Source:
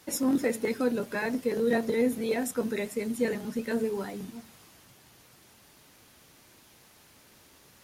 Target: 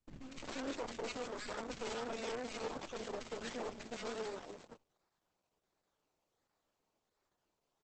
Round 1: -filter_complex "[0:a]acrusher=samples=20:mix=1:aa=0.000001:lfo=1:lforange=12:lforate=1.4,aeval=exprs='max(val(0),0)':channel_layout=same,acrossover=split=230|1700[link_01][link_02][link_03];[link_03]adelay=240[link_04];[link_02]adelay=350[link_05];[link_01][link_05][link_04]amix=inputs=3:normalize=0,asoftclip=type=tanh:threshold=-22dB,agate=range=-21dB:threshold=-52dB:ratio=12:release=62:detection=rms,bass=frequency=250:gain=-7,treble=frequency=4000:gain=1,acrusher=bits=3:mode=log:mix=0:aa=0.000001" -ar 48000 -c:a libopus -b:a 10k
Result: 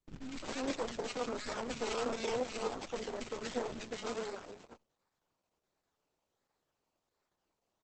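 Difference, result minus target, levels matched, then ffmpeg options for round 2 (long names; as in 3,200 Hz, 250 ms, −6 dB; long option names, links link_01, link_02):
soft clipping: distortion −14 dB
-filter_complex "[0:a]acrusher=samples=20:mix=1:aa=0.000001:lfo=1:lforange=12:lforate=1.4,aeval=exprs='max(val(0),0)':channel_layout=same,acrossover=split=230|1700[link_01][link_02][link_03];[link_03]adelay=240[link_04];[link_02]adelay=350[link_05];[link_01][link_05][link_04]amix=inputs=3:normalize=0,asoftclip=type=tanh:threshold=-33.5dB,agate=range=-21dB:threshold=-52dB:ratio=12:release=62:detection=rms,bass=frequency=250:gain=-7,treble=frequency=4000:gain=1,acrusher=bits=3:mode=log:mix=0:aa=0.000001" -ar 48000 -c:a libopus -b:a 10k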